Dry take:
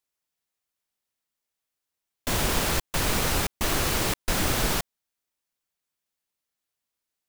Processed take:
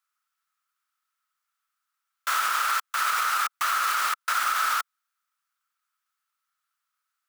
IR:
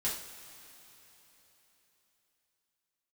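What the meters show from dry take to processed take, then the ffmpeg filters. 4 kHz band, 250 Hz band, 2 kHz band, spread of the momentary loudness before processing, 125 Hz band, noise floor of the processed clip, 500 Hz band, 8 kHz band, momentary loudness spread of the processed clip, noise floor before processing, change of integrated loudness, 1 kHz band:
-2.5 dB, under -30 dB, +4.0 dB, 5 LU, under -40 dB, -83 dBFS, -17.5 dB, -3.5 dB, 4 LU, under -85 dBFS, +0.5 dB, +7.5 dB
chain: -af "highpass=f=1.3k:t=q:w=10,alimiter=limit=-15.5dB:level=0:latency=1:release=79"

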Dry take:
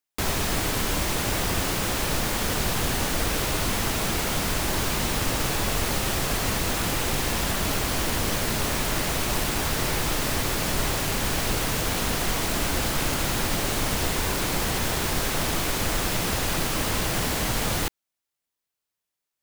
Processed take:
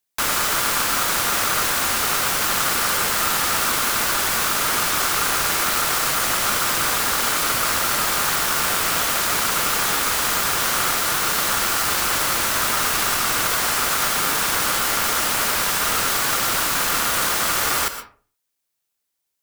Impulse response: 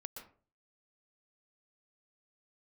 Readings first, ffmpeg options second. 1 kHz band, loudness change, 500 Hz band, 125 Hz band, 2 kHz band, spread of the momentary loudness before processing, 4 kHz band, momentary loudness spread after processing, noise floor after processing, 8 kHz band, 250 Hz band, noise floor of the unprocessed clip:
+8.0 dB, +6.5 dB, 0.0 dB, -8.0 dB, +7.5 dB, 0 LU, +6.0 dB, 0 LU, -78 dBFS, +7.5 dB, -4.0 dB, -85 dBFS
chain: -filter_complex "[0:a]highpass=41,aeval=exprs='val(0)*sin(2*PI*1300*n/s)':c=same,asplit=2[a][b];[1:a]atrim=start_sample=2205,highshelf=f=3.8k:g=11[c];[b][c]afir=irnorm=-1:irlink=0,volume=1.5dB[d];[a][d]amix=inputs=2:normalize=0,volume=1.5dB"

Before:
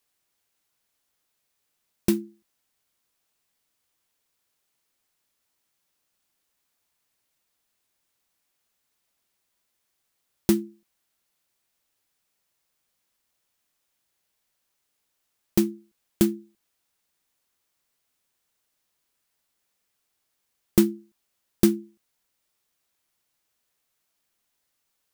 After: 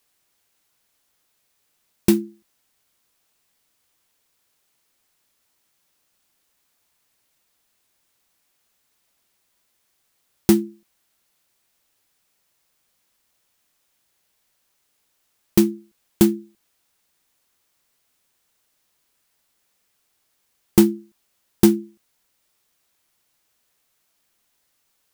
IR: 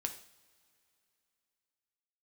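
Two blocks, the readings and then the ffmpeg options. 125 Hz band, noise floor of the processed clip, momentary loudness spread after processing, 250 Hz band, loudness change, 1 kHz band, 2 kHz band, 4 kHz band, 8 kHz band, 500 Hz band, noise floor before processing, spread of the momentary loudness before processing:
+5.0 dB, -70 dBFS, 10 LU, +5.5 dB, +5.0 dB, +8.5 dB, +5.0 dB, +5.0 dB, +5.0 dB, +5.5 dB, -77 dBFS, 12 LU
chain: -af "asoftclip=type=tanh:threshold=-9.5dB,volume=7dB"

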